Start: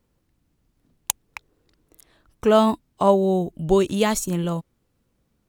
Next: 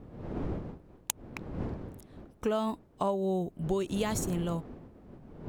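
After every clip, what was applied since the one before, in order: wind noise 300 Hz -34 dBFS; compressor 6:1, threshold -20 dBFS, peak gain reduction 9 dB; gain -6.5 dB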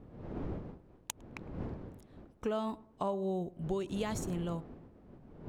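high shelf 9300 Hz -10 dB; tape echo 0.106 s, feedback 40%, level -19 dB, low-pass 1200 Hz; gain -4.5 dB

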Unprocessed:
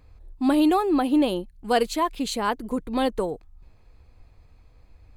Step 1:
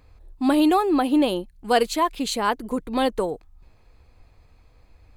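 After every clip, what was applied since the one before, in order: low shelf 280 Hz -4.5 dB; gain +3 dB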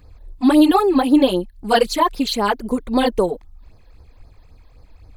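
phaser stages 12, 3.8 Hz, lowest notch 120–3000 Hz; gain +7 dB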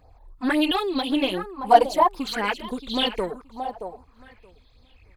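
one diode to ground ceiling -9.5 dBFS; feedback echo 0.625 s, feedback 22%, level -13.5 dB; LFO bell 0.53 Hz 710–3700 Hz +18 dB; gain -9 dB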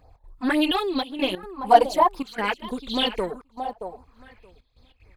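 step gate "xx.xxxxxxxxxx.." 189 bpm -12 dB

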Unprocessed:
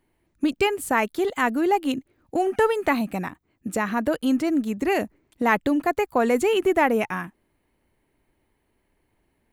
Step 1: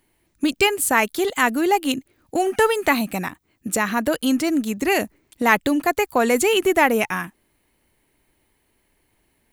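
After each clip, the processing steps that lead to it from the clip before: high shelf 2500 Hz +11 dB; gain +1.5 dB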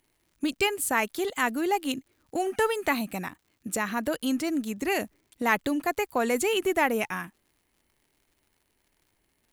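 crackle 130/s -46 dBFS; gain -7.5 dB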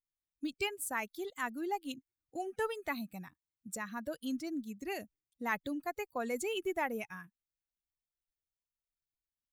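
per-bin expansion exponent 1.5; gain -8.5 dB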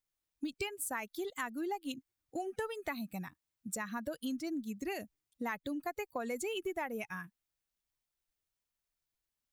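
compressor 5:1, threshold -40 dBFS, peak gain reduction 11.5 dB; gain +5 dB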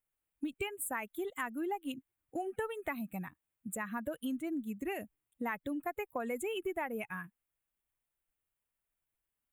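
Butterworth band-stop 5100 Hz, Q 1; gain +1 dB

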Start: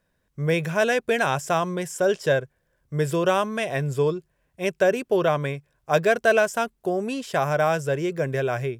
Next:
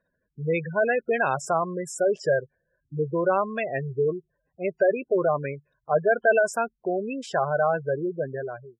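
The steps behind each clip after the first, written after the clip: ending faded out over 0.68 s; spectral gate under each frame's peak -15 dB strong; low shelf 160 Hz -10.5 dB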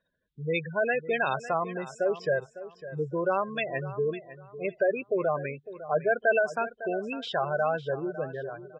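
synth low-pass 3600 Hz, resonance Q 6; feedback echo 0.554 s, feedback 25%, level -14.5 dB; gain -4.5 dB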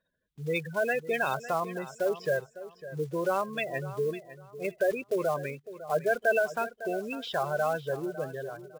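block floating point 5-bit; gain -1.5 dB

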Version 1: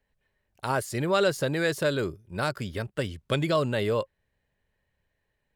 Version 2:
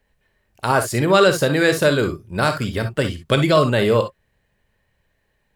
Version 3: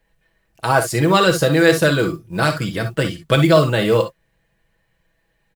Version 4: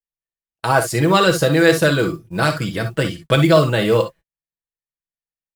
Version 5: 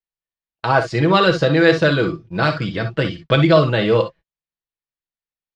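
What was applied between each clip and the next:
reverb, pre-delay 3 ms, DRR 6.5 dB; gain +9 dB
comb 6.1 ms; modulation noise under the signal 31 dB
gate -37 dBFS, range -39 dB
LPF 4800 Hz 24 dB/oct

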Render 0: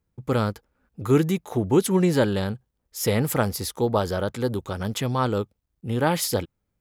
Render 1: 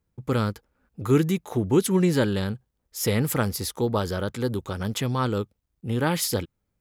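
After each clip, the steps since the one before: dynamic EQ 700 Hz, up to -6 dB, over -36 dBFS, Q 1.5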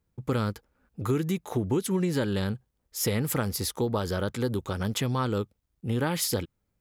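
compressor, threshold -23 dBFS, peak gain reduction 9 dB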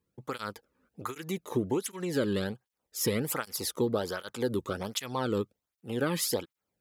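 tape flanging out of phase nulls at 1.3 Hz, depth 1.5 ms; gain +1 dB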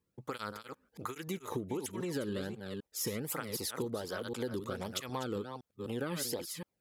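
reverse delay 0.255 s, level -9 dB; compressor, threshold -31 dBFS, peak gain reduction 8 dB; gain -2 dB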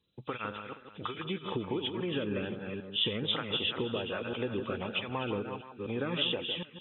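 nonlinear frequency compression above 2300 Hz 4:1; echo with dull and thin repeats by turns 0.158 s, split 1700 Hz, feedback 53%, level -8 dB; gain +2.5 dB

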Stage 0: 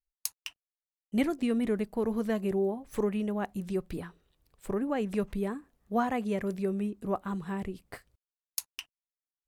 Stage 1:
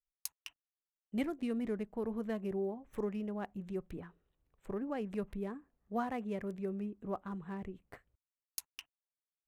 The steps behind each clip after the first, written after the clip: Wiener smoothing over 9 samples; gain -7.5 dB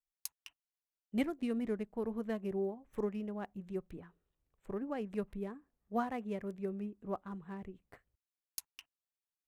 upward expander 1.5:1, over -45 dBFS; gain +2.5 dB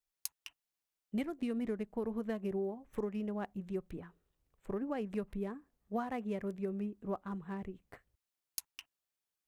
compressor 6:1, threshold -36 dBFS, peak gain reduction 9 dB; gain +3.5 dB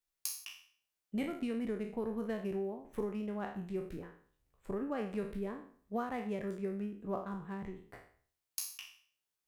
spectral trails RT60 0.50 s; gain -1 dB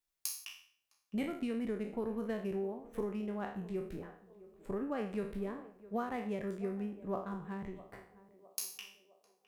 narrowing echo 0.659 s, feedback 52%, band-pass 580 Hz, level -16 dB

